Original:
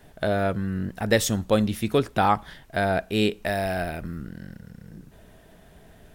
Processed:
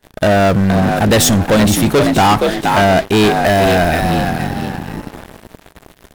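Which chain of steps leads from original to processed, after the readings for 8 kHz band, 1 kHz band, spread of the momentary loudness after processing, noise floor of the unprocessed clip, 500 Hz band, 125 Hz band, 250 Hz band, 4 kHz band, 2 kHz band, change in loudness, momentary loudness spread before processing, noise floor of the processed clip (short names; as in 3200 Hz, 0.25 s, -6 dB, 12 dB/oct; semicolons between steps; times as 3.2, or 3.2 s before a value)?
+15.0 dB, +13.0 dB, 10 LU, -52 dBFS, +12.0 dB, +13.5 dB, +13.5 dB, +14.0 dB, +12.5 dB, +12.5 dB, 16 LU, -48 dBFS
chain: frequency-shifting echo 0.471 s, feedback 34%, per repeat +60 Hz, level -9 dB; sample leveller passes 5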